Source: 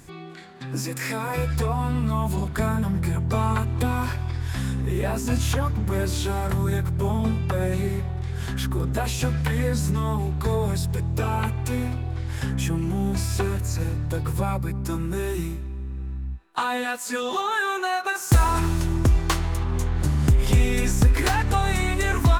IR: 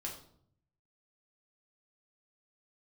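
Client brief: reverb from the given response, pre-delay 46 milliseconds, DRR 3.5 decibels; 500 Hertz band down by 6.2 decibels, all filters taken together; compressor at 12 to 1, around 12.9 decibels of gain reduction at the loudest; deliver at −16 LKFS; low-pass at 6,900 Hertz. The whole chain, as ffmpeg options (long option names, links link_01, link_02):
-filter_complex "[0:a]lowpass=6900,equalizer=frequency=500:width_type=o:gain=-8.5,acompressor=threshold=-26dB:ratio=12,asplit=2[link_01][link_02];[1:a]atrim=start_sample=2205,adelay=46[link_03];[link_02][link_03]afir=irnorm=-1:irlink=0,volume=-3dB[link_04];[link_01][link_04]amix=inputs=2:normalize=0,volume=13dB"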